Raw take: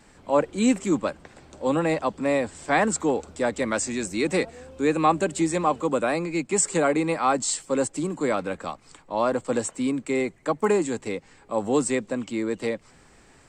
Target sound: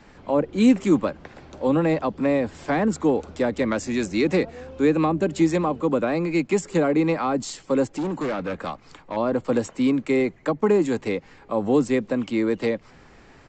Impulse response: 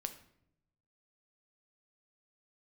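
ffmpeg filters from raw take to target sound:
-filter_complex "[0:a]acrossover=split=440[a][b];[b]acompressor=threshold=-30dB:ratio=6[c];[a][c]amix=inputs=2:normalize=0,asettb=1/sr,asplit=3[d][e][f];[d]atrim=end=7.854[g];[e]atrim=start=7.85:end=9.17,asetpts=PTS-STARTPTS,afade=t=in:d=0.004:c=qsin,afade=t=out:st=1.316:d=0.004:c=qsin,asoftclip=type=hard:threshold=-28dB[h];[f]atrim=start=9.166[i];[g][h]acrossfade=d=0.004:c1=hsin:c2=qsin[j];[j][i]acrossfade=d=0.004:c1=qsin:c2=hsin,adynamicsmooth=sensitivity=4:basefreq=5.5k,aresample=16000,aresample=44100,volume=5dB"

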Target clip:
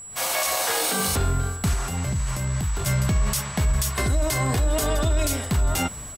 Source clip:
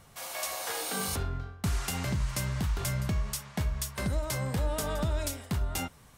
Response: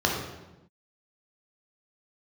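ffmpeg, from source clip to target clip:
-filter_complex "[0:a]asettb=1/sr,asplit=3[a][b][c];[a]atrim=end=3.904[d];[b]atrim=start=3.9:end=5.33,asetpts=PTS-STARTPTS,afade=t=in:d=0.004:c=qsin,afade=t=out:st=1.426:d=0.004:c=qsin,aecho=1:1:2.8:0.62,atrim=end_sample=63063[e];[c]atrim=start=5.326[f];[d][e]acrossfade=d=0.004:c1=hsin:c2=qsin[g];[g][f]acrossfade=d=0.004:c1=qsin:c2=hsin,dynaudnorm=f=100:g=3:m=15dB,alimiter=limit=-15dB:level=0:latency=1:release=23,asettb=1/sr,asplit=3[h][i][j];[h]atrim=end=1.734[k];[i]atrim=start=1.73:end=2.86,asetpts=PTS-STARTPTS,afade=t=in:d=0.004:c=qsin,afade=t=out:st=1.126:d=0.004:c=qsin,acrossover=split=140|1200|3200|7000[l][m][n][o][p];[l]acompressor=threshold=-24dB:ratio=4[q];[m]acompressor=threshold=-33dB:ratio=4[r];[n]acompressor=threshold=-43dB:ratio=4[s];[o]acompressor=threshold=-48dB:ratio=4[t];[p]acompressor=threshold=-44dB:ratio=4[u];[q][r][s][t][u]amix=inputs=5:normalize=0[v];[j]atrim=start=2.856[w];[k][v]acrossfade=d=0.004:c1=hsin:c2=qsin[x];[x][w]acrossfade=d=0.004:c1=qsin:c2=hsin,aeval=exprs='val(0)+0.0141*sin(2*PI*7800*n/s)':c=same,asplit=2[y][z];[z]aecho=0:1:404|808|1212:0.0794|0.0326|0.0134[aa];[y][aa]amix=inputs=2:normalize=0"

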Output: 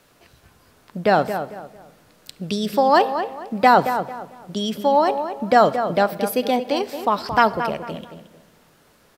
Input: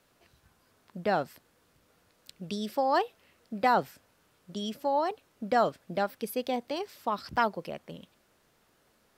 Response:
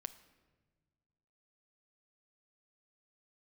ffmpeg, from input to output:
-filter_complex "[0:a]asplit=2[a][b];[b]adelay=224,lowpass=f=2.7k:p=1,volume=-9dB,asplit=2[c][d];[d]adelay=224,lowpass=f=2.7k:p=1,volume=0.3,asplit=2[e][f];[f]adelay=224,lowpass=f=2.7k:p=1,volume=0.3[g];[a][c][e][g]amix=inputs=4:normalize=0,asplit=2[h][i];[1:a]atrim=start_sample=2205[j];[i][j]afir=irnorm=-1:irlink=0,volume=8.5dB[k];[h][k]amix=inputs=2:normalize=0,volume=2dB"

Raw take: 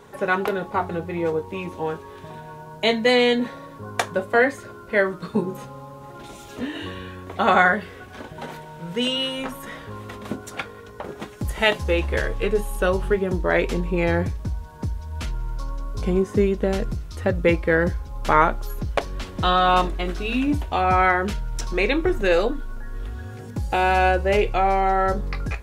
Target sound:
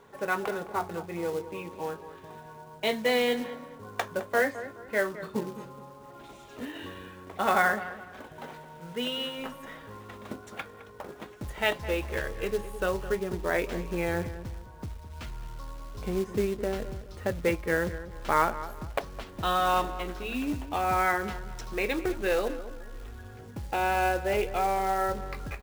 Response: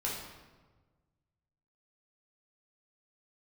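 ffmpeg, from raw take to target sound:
-filter_complex "[0:a]lowpass=f=3.5k:p=1,lowshelf=f=270:g=-5.5,acrusher=bits=4:mode=log:mix=0:aa=0.000001,asplit=2[a][b];[b]adelay=212,lowpass=f=1.9k:p=1,volume=-13dB,asplit=2[c][d];[d]adelay=212,lowpass=f=1.9k:p=1,volume=0.35,asplit=2[e][f];[f]adelay=212,lowpass=f=1.9k:p=1,volume=0.35[g];[c][e][g]amix=inputs=3:normalize=0[h];[a][h]amix=inputs=2:normalize=0,volume=-6.5dB"

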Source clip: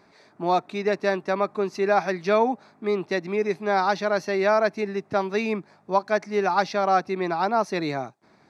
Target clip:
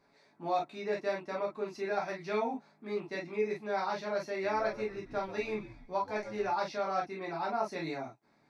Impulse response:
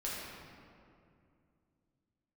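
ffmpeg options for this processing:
-filter_complex "[0:a]asettb=1/sr,asplit=3[a][b][c];[a]atrim=end=4.294[d];[b]atrim=start=4.29:end=6.49,asetpts=PTS-STARTPTS,afade=t=in:d=0.004:c=qsin,afade=t=out:st=2.196:d=0.004:c=qsin,asplit=5[e][f][g][h][i];[f]adelay=134,afreqshift=-91,volume=-14.5dB[j];[g]adelay=268,afreqshift=-182,volume=-22.9dB[k];[h]adelay=402,afreqshift=-273,volume=-31.3dB[l];[i]adelay=536,afreqshift=-364,volume=-39.7dB[m];[e][j][k][l][m]amix=inputs=5:normalize=0,atrim=end_sample=97020[n];[c]atrim=start=6.486[o];[d][n]acrossfade=d=0.004:c1=hsin:c2=qsin[p];[p][o]acrossfade=d=0.004:c1=qsin:c2=hsin[q];[1:a]atrim=start_sample=2205,atrim=end_sample=3969,asetrate=70560,aresample=44100[r];[q][r]afir=irnorm=-1:irlink=0,volume=-6.5dB"

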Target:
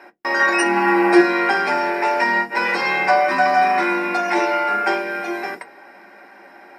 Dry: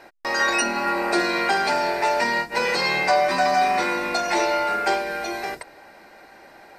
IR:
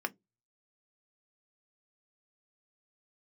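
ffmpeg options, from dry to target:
-filter_complex "[0:a]asettb=1/sr,asplit=3[a][b][c];[a]atrim=end=0.594[d];[b]atrim=start=0.59:end=1.21,asetpts=PTS-STARTPTS,afade=t=in:d=0.004:c=qsin,afade=t=out:st=0.616:d=0.004:c=qsin,aecho=1:1:6:0.94,atrim=end_sample=27342[e];[c]atrim=start=1.206[f];[d][e]acrossfade=d=0.004:c1=hsin:c2=qsin[g];[g][f]acrossfade=d=0.004:c1=qsin:c2=hsin[h];[1:a]atrim=start_sample=2205[i];[h][i]afir=irnorm=-1:irlink=0,volume=-1dB"

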